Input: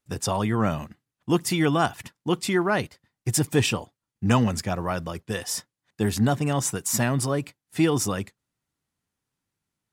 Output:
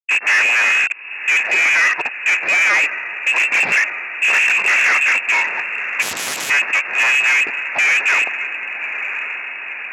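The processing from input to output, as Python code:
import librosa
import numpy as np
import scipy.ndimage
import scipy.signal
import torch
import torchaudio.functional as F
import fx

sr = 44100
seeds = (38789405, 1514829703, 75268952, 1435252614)

p1 = fx.lpc_vocoder(x, sr, seeds[0], excitation='whisper', order=10, at=(3.32, 5.18))
p2 = fx.fuzz(p1, sr, gain_db=41.0, gate_db=-47.0)
p3 = p2 + fx.echo_diffused(p2, sr, ms=1093, feedback_pct=60, wet_db=-12.0, dry=0)
p4 = fx.freq_invert(p3, sr, carrier_hz=2700)
p5 = fx.peak_eq(p4, sr, hz=1800.0, db=7.5, octaves=0.52)
p6 = 10.0 ** (-9.5 / 20.0) * np.tanh(p5 / 10.0 ** (-9.5 / 20.0))
p7 = scipy.signal.sosfilt(scipy.signal.butter(2, 420.0, 'highpass', fs=sr, output='sos'), p6)
y = fx.spectral_comp(p7, sr, ratio=4.0, at=(6.01, 6.49), fade=0.02)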